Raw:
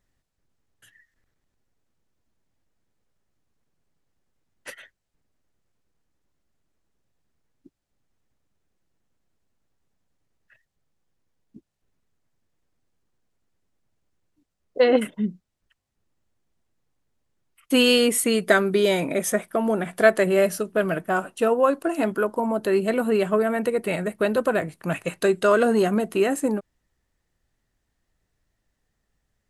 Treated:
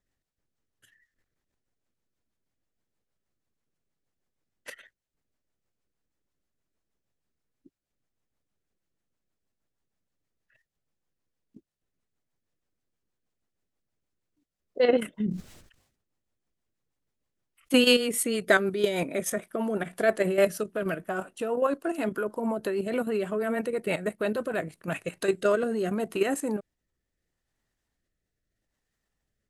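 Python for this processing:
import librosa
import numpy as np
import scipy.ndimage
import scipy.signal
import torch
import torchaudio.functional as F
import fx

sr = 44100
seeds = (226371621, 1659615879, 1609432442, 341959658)

y = fx.low_shelf(x, sr, hz=200.0, db=-4.5)
y = fx.level_steps(y, sr, step_db=9)
y = fx.rotary_switch(y, sr, hz=6.3, then_hz=0.75, switch_at_s=24.55)
y = fx.sustainer(y, sr, db_per_s=77.0, at=(15.11, 17.83))
y = y * librosa.db_to_amplitude(1.5)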